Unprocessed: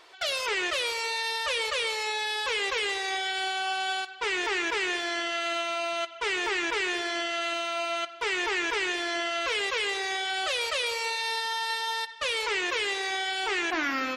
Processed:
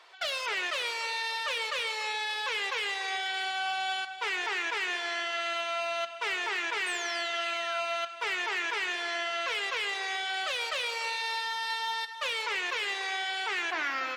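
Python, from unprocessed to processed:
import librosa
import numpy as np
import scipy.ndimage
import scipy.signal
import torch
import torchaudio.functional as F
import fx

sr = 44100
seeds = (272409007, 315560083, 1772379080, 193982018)

p1 = fx.octave_divider(x, sr, octaves=2, level_db=-3.0)
p2 = scipy.signal.sosfilt(scipy.signal.butter(2, 610.0, 'highpass', fs=sr, output='sos'), p1)
p3 = fx.high_shelf(p2, sr, hz=5900.0, db=-8.0)
p4 = fx.rider(p3, sr, range_db=10, speed_s=0.5)
p5 = p3 + (p4 * 10.0 ** (-1.5 / 20.0))
p6 = fx.spec_paint(p5, sr, seeds[0], shape='fall', start_s=6.86, length_s=0.96, low_hz=1300.0, high_hz=8900.0, level_db=-37.0)
p7 = p6 + fx.echo_feedback(p6, sr, ms=288, feedback_pct=45, wet_db=-14.0, dry=0)
p8 = fx.slew_limit(p7, sr, full_power_hz=300.0)
y = p8 * 10.0 ** (-6.5 / 20.0)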